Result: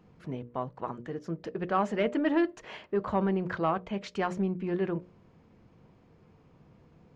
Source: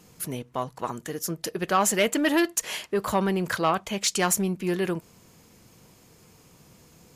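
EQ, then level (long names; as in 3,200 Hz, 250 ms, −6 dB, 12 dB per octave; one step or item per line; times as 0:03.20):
head-to-tape spacing loss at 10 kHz 42 dB
mains-hum notches 60/120/180/240/300/360/420/480/540/600 Hz
−1.0 dB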